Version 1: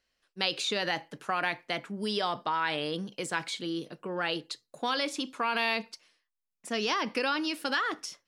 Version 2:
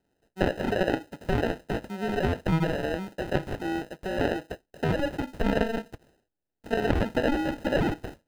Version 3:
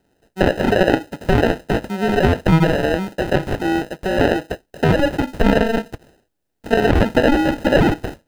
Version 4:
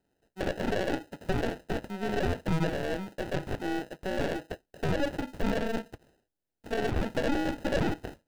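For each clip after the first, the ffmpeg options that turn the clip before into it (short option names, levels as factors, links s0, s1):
-filter_complex "[0:a]bass=f=250:g=-6,treble=f=4000:g=-4,acrusher=samples=39:mix=1:aa=0.000001,acrossover=split=3400[s0][s1];[s1]acompressor=threshold=0.00178:ratio=4:attack=1:release=60[s2];[s0][s2]amix=inputs=2:normalize=0,volume=1.88"
-af "alimiter=level_in=3.98:limit=0.891:release=50:level=0:latency=1,volume=0.891"
-af "aeval=exprs='(tanh(5.01*val(0)+0.75)-tanh(0.75))/5.01':c=same,volume=0.376"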